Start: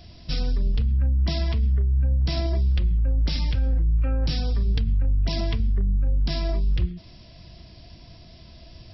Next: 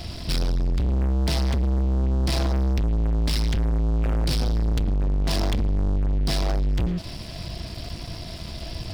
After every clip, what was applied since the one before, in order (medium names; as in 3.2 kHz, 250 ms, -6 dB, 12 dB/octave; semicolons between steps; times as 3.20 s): waveshaping leveller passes 5; trim -6 dB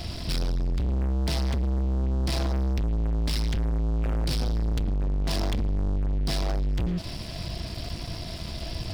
peak limiter -23.5 dBFS, peak gain reduction 4 dB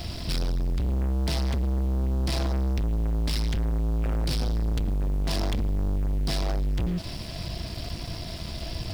word length cut 10-bit, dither triangular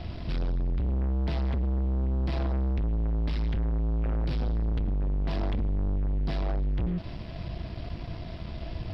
distance through air 350 m; trim -1.5 dB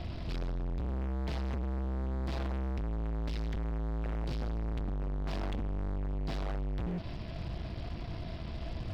overload inside the chain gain 31.5 dB; trim -1.5 dB